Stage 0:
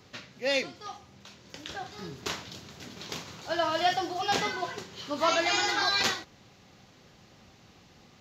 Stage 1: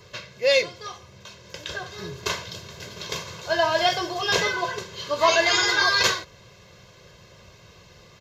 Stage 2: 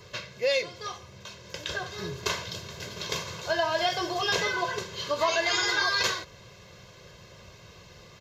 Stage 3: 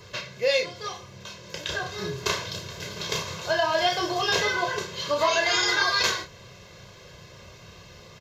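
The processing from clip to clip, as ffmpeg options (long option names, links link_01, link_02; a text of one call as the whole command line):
ffmpeg -i in.wav -af "aecho=1:1:1.9:0.85,volume=4.5dB" out.wav
ffmpeg -i in.wav -af "acompressor=threshold=-25dB:ratio=2.5" out.wav
ffmpeg -i in.wav -filter_complex "[0:a]asplit=2[link_01][link_02];[link_02]adelay=31,volume=-6dB[link_03];[link_01][link_03]amix=inputs=2:normalize=0,volume=2dB" out.wav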